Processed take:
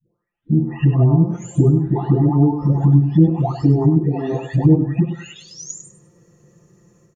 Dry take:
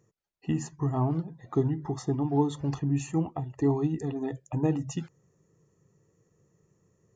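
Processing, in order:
every frequency bin delayed by itself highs late, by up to 945 ms
treble cut that deepens with the level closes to 380 Hz, closed at −26.5 dBFS
automatic gain control gain up to 13 dB
on a send: repeating echo 100 ms, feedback 26%, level −9.5 dB
on the sum: level +4 dB

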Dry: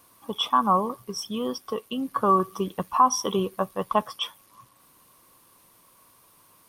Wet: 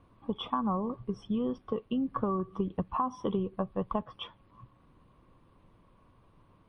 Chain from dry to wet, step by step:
spectral tilt −4.5 dB per octave
downward compressor 8 to 1, threshold −21 dBFS, peak gain reduction 9.5 dB
high shelf with overshoot 4,300 Hz −8.5 dB, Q 1.5
level −5.5 dB
MP3 40 kbit/s 24,000 Hz

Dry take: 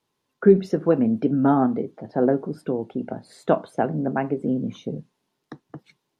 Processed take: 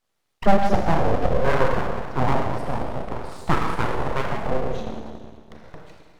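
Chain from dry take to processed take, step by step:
four-comb reverb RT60 1.8 s, combs from 27 ms, DRR −1 dB
0:04.80–0:05.64: ring modulation 110 Hz
full-wave rectification

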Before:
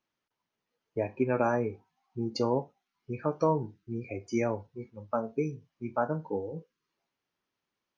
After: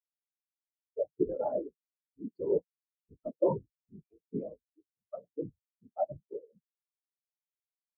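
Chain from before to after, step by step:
random phases in short frames
sine wavefolder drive 5 dB, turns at −11.5 dBFS
every bin expanded away from the loudest bin 4 to 1
level −4 dB

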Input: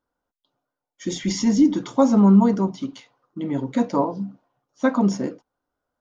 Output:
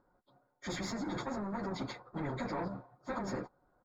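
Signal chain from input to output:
parametric band 120 Hz +8.5 dB 0.3 octaves
comb filter 5.5 ms, depth 33%
reversed playback
downward compressor 20 to 1, threshold −20 dBFS, peak gain reduction 13.5 dB
reversed playback
brickwall limiter −24 dBFS, peak gain reduction 10.5 dB
leveller curve on the samples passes 1
moving average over 15 samples
time stretch by phase vocoder 0.64×
every bin compressed towards the loudest bin 2 to 1
level −2.5 dB

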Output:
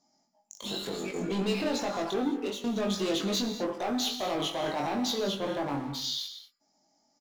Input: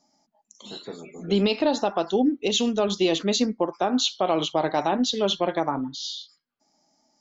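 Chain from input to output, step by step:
0:05.19–0:06.04: high-shelf EQ 2,000 Hz −10 dB
leveller curve on the samples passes 3
downward compressor, threshold −27 dBFS, peak gain reduction 12.5 dB
0:02.24–0:02.64: fade out
brickwall limiter −27.5 dBFS, peak gain reduction 9 dB
double-tracking delay 21 ms −3.5 dB
reverb whose tail is shaped and stops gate 250 ms flat, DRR 7.5 dB

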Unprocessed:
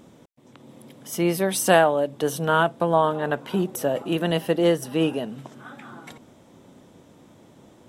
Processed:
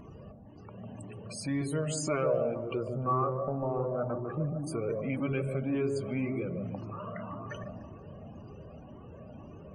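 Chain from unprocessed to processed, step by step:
downward compressor 2 to 1, threshold −40 dBFS, peak gain reduction 15.5 dB
hollow resonant body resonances 750/1,400 Hz, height 12 dB, ringing for 60 ms
change of speed 0.809×
dynamic equaliser 860 Hz, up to −6 dB, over −49 dBFS, Q 2.4
spectral peaks only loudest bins 64
low-shelf EQ 140 Hz +4.5 dB
gain on a spectral selection 0:02.79–0:04.67, 1,900–11,000 Hz −23 dB
on a send: delay with a low-pass on its return 149 ms, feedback 56%, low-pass 800 Hz, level −4 dB
on the sum: transient designer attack −2 dB, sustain +3 dB
flanger whose copies keep moving one way rising 1.9 Hz
level +5 dB

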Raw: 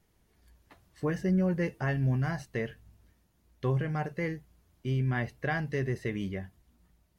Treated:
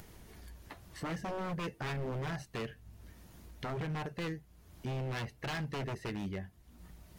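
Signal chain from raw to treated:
wave folding −29 dBFS
upward compression, threshold −35 dBFS
level −3 dB

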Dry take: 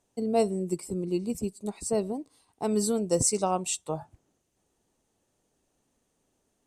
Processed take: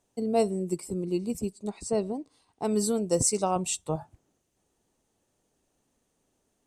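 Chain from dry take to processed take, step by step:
0:01.52–0:02.65: low-pass filter 7,400 Hz 12 dB per octave
0:03.56–0:03.96: low-shelf EQ 160 Hz +11 dB

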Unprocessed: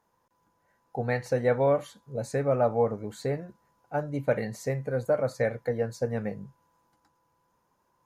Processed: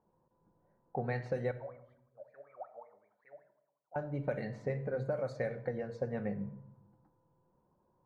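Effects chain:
low-pass that shuts in the quiet parts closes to 630 Hz, open at −20 dBFS
downward compressor 5 to 1, threshold −35 dBFS, peak gain reduction 14.5 dB
0:01.51–0:03.96: LFO wah 5.3 Hz 580–2,300 Hz, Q 17
convolution reverb RT60 0.80 s, pre-delay 5 ms, DRR 9 dB
level +1.5 dB

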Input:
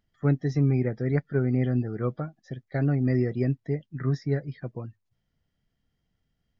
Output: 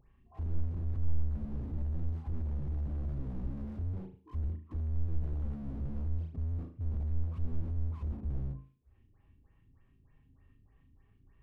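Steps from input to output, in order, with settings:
harmonic and percussive parts rebalanced harmonic +9 dB
auto-filter low-pass square 5.7 Hz 460–4,600 Hz
wrong playback speed 78 rpm record played at 45 rpm
downward compressor 6 to 1, threshold −20 dBFS, peak gain reduction 12.5 dB
tilt shelving filter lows +5 dB, about 800 Hz
harmonic generator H 4 −20 dB, 5 −15 dB, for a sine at −12 dBFS
high-shelf EQ 4,200 Hz −11 dB
all-pass dispersion highs, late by 144 ms, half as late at 2,800 Hz
on a send: flutter between parallel walls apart 6.4 metres, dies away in 0.39 s
on the sum: slew-rate limiting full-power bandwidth 3.1 Hz
level −4 dB

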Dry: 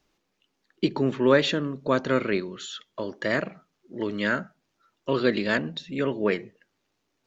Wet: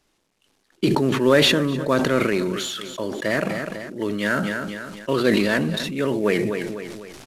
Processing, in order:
variable-slope delta modulation 64 kbit/s
repeating echo 250 ms, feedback 33%, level −20.5 dB
level that may fall only so fast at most 26 dB per second
level +2.5 dB

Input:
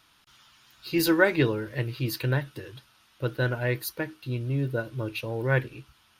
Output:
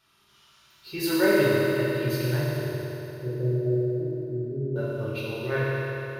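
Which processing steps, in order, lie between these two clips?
0:02.63–0:04.76: inverse Chebyshev low-pass filter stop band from 2,100 Hz, stop band 70 dB
convolution reverb RT60 3.6 s, pre-delay 3 ms, DRR −9.5 dB
level −9 dB

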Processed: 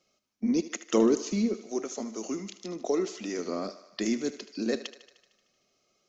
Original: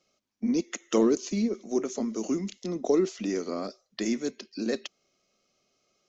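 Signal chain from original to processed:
0:01.57–0:03.39: low-shelf EQ 350 Hz −9.5 dB
feedback echo with a high-pass in the loop 76 ms, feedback 67%, high-pass 360 Hz, level −13.5 dB

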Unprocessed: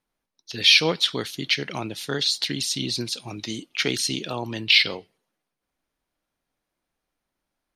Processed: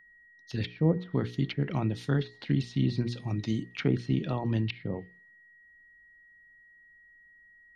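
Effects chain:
treble cut that deepens with the level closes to 590 Hz, closed at −17.5 dBFS
bass and treble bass +14 dB, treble −6 dB
steady tone 1,900 Hz −48 dBFS
parametric band 3,200 Hz −5 dB 1.9 octaves
mains-hum notches 60/120/180/240/300/360/420/480 Hz
level −4 dB

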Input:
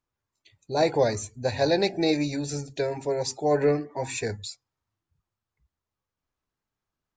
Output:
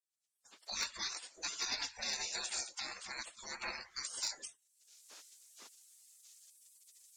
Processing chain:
camcorder AGC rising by 37 dB per second
low-pass filter 6,500 Hz 12 dB per octave
gate on every frequency bin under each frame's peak −30 dB weak
bass and treble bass −8 dB, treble +6 dB, from 0:03.79 treble +14 dB
hard clipping −30 dBFS, distortion −27 dB
every ending faded ahead of time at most 270 dB per second
level +3 dB

